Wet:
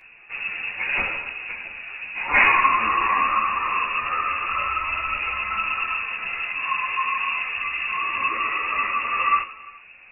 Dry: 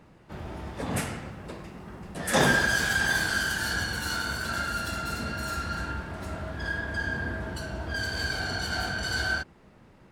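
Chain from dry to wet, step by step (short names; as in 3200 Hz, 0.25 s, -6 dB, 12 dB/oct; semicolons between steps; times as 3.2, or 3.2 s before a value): non-linear reverb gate 0.44 s falling, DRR 11.5 dB; inverted band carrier 2700 Hz; ensemble effect; gain +9 dB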